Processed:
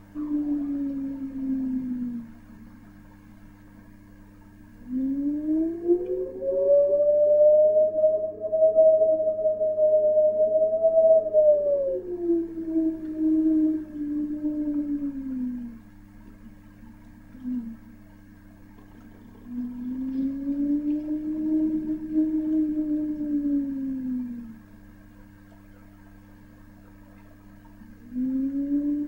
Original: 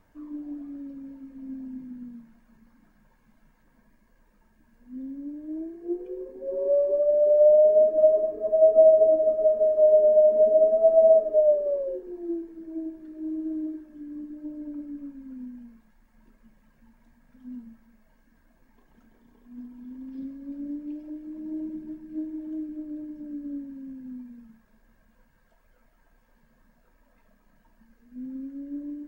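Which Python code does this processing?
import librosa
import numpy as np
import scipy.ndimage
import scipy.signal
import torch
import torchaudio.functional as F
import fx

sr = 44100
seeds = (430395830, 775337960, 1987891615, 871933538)

y = fx.rider(x, sr, range_db=10, speed_s=2.0)
y = fx.dmg_buzz(y, sr, base_hz=100.0, harmonics=3, level_db=-51.0, tilt_db=0, odd_only=False)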